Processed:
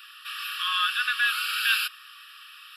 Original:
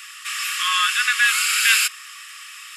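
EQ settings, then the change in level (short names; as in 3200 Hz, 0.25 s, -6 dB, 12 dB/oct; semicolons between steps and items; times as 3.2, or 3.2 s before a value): bell 8400 Hz -10.5 dB 0.59 oct; dynamic EQ 1000 Hz, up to +3 dB, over -42 dBFS, Q 5.4; fixed phaser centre 1400 Hz, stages 8; -4.0 dB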